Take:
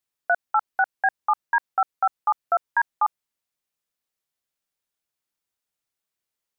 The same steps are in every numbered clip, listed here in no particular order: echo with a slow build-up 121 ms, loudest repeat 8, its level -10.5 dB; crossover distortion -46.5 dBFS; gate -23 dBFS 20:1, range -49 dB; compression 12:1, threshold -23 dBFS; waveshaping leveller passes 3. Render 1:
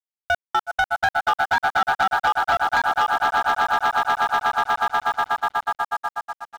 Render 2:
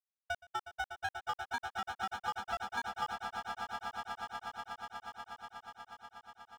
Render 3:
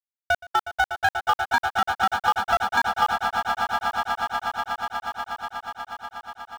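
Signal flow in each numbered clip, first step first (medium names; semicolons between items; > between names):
echo with a slow build-up > compression > waveshaping leveller > gate > crossover distortion; crossover distortion > waveshaping leveller > compression > gate > echo with a slow build-up; gate > compression > crossover distortion > waveshaping leveller > echo with a slow build-up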